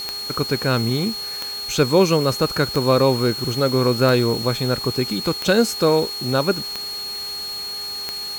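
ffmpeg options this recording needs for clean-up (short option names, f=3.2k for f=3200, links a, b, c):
-af "adeclick=t=4,bandreject=f=407.2:t=h:w=4,bandreject=f=814.4:t=h:w=4,bandreject=f=1.2216k:t=h:w=4,bandreject=f=4.3k:w=30,afwtdn=0.013"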